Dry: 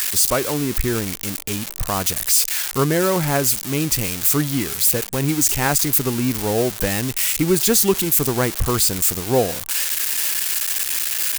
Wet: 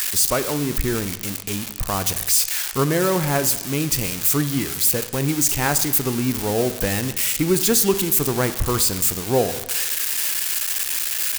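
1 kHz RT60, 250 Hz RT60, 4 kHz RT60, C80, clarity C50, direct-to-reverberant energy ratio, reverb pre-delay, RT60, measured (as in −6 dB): 1.1 s, 1.1 s, 1.1 s, 14.5 dB, 12.5 dB, 11.0 dB, 20 ms, 1.1 s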